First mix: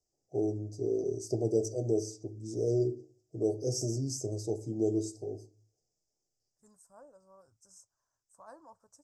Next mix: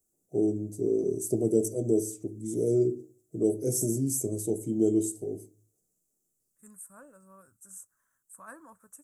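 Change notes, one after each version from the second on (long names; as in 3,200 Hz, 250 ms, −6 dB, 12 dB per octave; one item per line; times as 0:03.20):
master: remove drawn EQ curve 120 Hz 0 dB, 190 Hz −12 dB, 830 Hz +4 dB, 1,300 Hz −12 dB, 2,900 Hz −19 dB, 5,000 Hz +11 dB, 9,800 Hz −23 dB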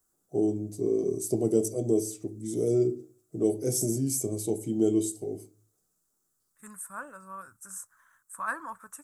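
second voice +5.0 dB
master: add flat-topped bell 2,000 Hz +11 dB 2.9 octaves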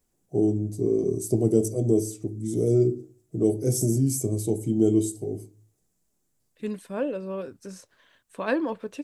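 second voice: remove drawn EQ curve 110 Hz 0 dB, 450 Hz −25 dB, 1,300 Hz +8 dB, 2,800 Hz −22 dB, 4,500 Hz −18 dB, 7,900 Hz +13 dB
master: add low-shelf EQ 210 Hz +12 dB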